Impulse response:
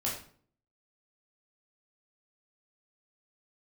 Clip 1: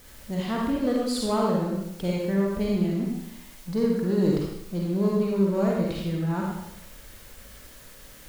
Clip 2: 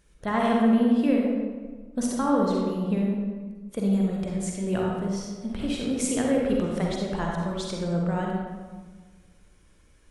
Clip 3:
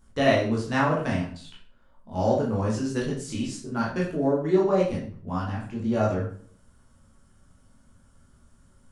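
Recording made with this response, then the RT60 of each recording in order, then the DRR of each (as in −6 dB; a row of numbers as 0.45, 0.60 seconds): 3; 0.80, 1.4, 0.50 seconds; −3.0, −2.0, −5.5 decibels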